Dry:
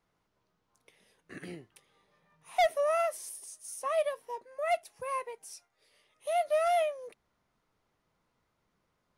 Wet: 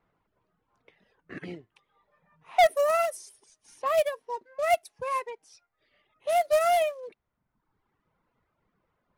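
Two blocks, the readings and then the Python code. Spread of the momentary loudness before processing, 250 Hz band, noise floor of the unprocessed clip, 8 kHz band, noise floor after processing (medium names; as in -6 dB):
20 LU, no reading, -78 dBFS, +1.5 dB, -80 dBFS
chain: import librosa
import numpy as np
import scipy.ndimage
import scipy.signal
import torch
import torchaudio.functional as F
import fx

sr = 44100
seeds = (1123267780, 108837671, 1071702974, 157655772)

y = fx.quant_float(x, sr, bits=2)
y = fx.dereverb_blind(y, sr, rt60_s=1.1)
y = fx.env_lowpass(y, sr, base_hz=2300.0, full_db=-28.0)
y = F.gain(torch.from_numpy(y), 5.5).numpy()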